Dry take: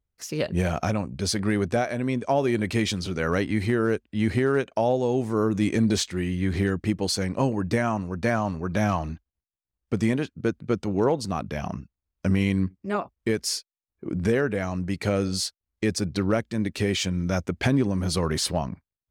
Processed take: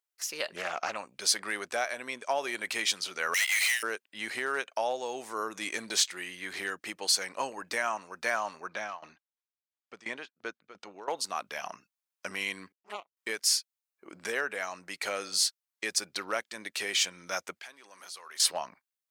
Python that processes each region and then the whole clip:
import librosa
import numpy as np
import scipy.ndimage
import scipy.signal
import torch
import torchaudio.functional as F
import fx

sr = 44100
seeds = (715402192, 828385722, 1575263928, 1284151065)

y = fx.chain(x, sr, fx.air_absorb(metres=68.0),
    fx.doppler_dist(depth_ms=0.46), at=(0.56, 0.96))
y = fx.chain(y, sr, fx.steep_highpass(hz=1900.0, slope=96),
    fx.leveller(passes=5), at=(3.34, 3.83))
y = fx.chain(y, sr, fx.tremolo_shape(shape='saw_down', hz=2.9, depth_pct=90),
    fx.air_absorb(metres=100.0), at=(8.68, 11.08))
y = fx.chain(y, sr, fx.low_shelf(hz=140.0, db=11.0),
    fx.power_curve(exponent=2.0),
    fx.env_flanger(rest_ms=6.8, full_db=-29.5), at=(12.72, 13.17))
y = fx.chain(y, sr, fx.highpass(hz=950.0, slope=6),
    fx.level_steps(step_db=22), at=(17.59, 18.4))
y = scipy.signal.sosfilt(scipy.signal.butter(2, 920.0, 'highpass', fs=sr, output='sos'), y)
y = fx.high_shelf(y, sr, hz=6000.0, db=5.0)